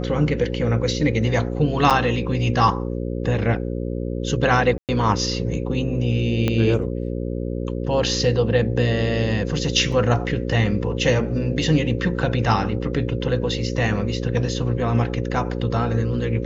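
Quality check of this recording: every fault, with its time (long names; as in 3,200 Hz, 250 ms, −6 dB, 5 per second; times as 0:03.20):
mains buzz 60 Hz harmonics 9 −26 dBFS
0:01.90–0:01.91: drop-out 6.9 ms
0:04.78–0:04.89: drop-out 108 ms
0:06.48: click −9 dBFS
0:09.92: drop-out 3.8 ms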